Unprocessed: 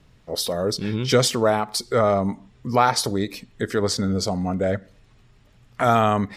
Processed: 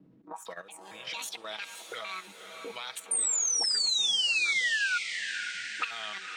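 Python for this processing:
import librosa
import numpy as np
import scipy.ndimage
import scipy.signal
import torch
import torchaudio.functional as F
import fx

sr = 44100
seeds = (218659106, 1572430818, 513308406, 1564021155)

y = fx.pitch_trill(x, sr, semitones=11.0, every_ms=227)
y = fx.auto_wah(y, sr, base_hz=260.0, top_hz=3400.0, q=3.1, full_db=-19.0, direction='up')
y = fx.spec_paint(y, sr, seeds[0], shape='fall', start_s=3.11, length_s=1.87, low_hz=1400.0, high_hz=9100.0, level_db=-18.0)
y = fx.level_steps(y, sr, step_db=14)
y = fx.peak_eq(y, sr, hz=200.0, db=4.5, octaves=0.29)
y = y + 0.39 * np.pad(y, (int(6.2 * sr / 1000.0), 0))[:len(y)]
y = fx.echo_diffused(y, sr, ms=527, feedback_pct=50, wet_db=-10.0)
y = fx.band_squash(y, sr, depth_pct=40)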